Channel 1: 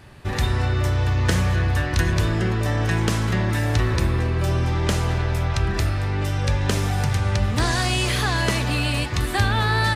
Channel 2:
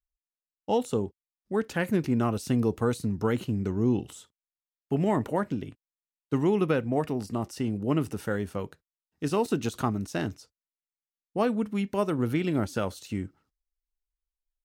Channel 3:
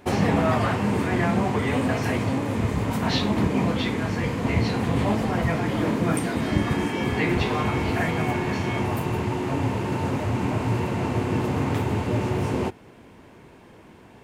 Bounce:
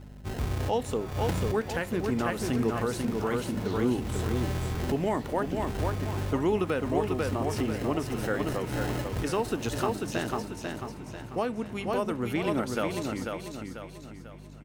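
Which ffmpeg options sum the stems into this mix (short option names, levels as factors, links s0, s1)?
-filter_complex "[0:a]acompressor=mode=upward:threshold=0.0112:ratio=2.5,acrusher=samples=38:mix=1:aa=0.000001,volume=0.355,asplit=2[s0][s1];[s1]volume=0.2[s2];[1:a]bandreject=f=50:t=h:w=6,bandreject=f=100:t=h:w=6,bandreject=f=150:t=h:w=6,bandreject=f=200:t=h:w=6,aeval=exprs='val(0)+0.0112*(sin(2*PI*50*n/s)+sin(2*PI*2*50*n/s)/2+sin(2*PI*3*50*n/s)/3+sin(2*PI*4*50*n/s)/4+sin(2*PI*5*50*n/s)/5)':c=same,lowshelf=f=230:g=-10,volume=1.26,asplit=3[s3][s4][s5];[s4]volume=0.531[s6];[2:a]acompressor=threshold=0.0316:ratio=6,adelay=550,volume=0.266[s7];[s5]apad=whole_len=438861[s8];[s0][s8]sidechaincompress=threshold=0.01:ratio=8:attack=16:release=153[s9];[s3][s7]amix=inputs=2:normalize=0,alimiter=limit=0.141:level=0:latency=1:release=435,volume=1[s10];[s2][s6]amix=inputs=2:normalize=0,aecho=0:1:493|986|1479|1972|2465|2958:1|0.43|0.185|0.0795|0.0342|0.0147[s11];[s9][s10][s11]amix=inputs=3:normalize=0"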